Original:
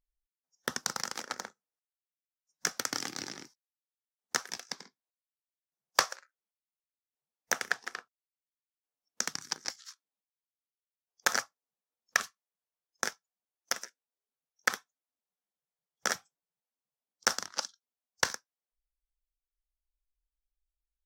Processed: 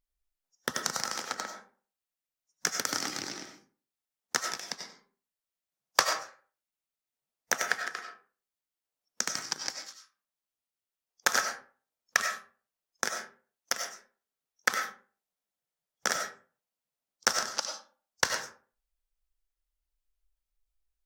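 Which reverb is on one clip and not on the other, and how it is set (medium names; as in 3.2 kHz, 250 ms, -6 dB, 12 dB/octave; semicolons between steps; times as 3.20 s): algorithmic reverb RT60 0.41 s, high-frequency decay 0.6×, pre-delay 55 ms, DRR 4 dB; trim +1.5 dB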